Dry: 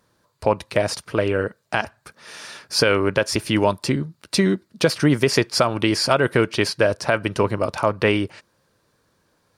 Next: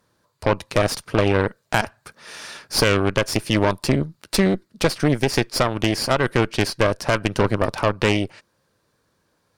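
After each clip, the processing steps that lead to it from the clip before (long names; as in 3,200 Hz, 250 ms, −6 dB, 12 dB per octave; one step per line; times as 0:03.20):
speech leveller within 3 dB 0.5 s
harmonic generator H 8 −16 dB, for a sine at −1 dBFS
level −2 dB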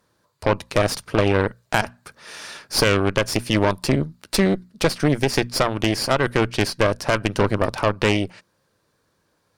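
mains-hum notches 60/120/180/240 Hz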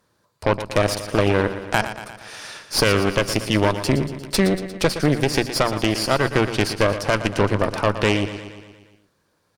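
repeating echo 117 ms, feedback 59%, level −11.5 dB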